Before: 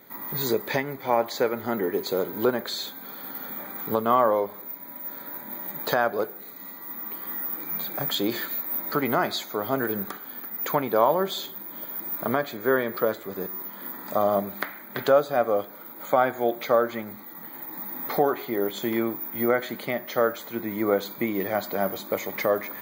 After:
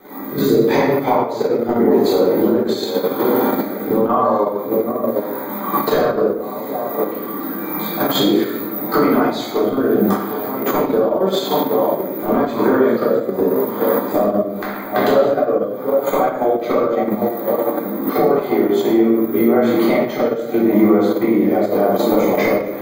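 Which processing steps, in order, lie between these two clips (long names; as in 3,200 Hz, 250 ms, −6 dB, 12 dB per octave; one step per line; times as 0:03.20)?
flat-topped bell 520 Hz +8.5 dB 2.9 octaves
on a send: delay that swaps between a low-pass and a high-pass 765 ms, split 1,000 Hz, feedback 55%, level −13.5 dB
on the sum: downward compressor 20 to 1, threshold −23 dBFS, peak gain reduction 19 dB
rotating-speaker cabinet horn 0.85 Hz
rectangular room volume 400 cubic metres, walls mixed, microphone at 3.7 metres
in parallel at −1 dB: output level in coarse steps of 22 dB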